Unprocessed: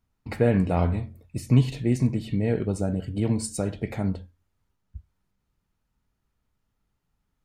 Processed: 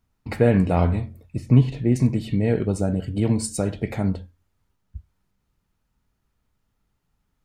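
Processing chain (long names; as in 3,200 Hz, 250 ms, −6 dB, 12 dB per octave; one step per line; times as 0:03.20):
0:01.36–0:01.96: low-pass filter 1,600 Hz 6 dB per octave
level +3.5 dB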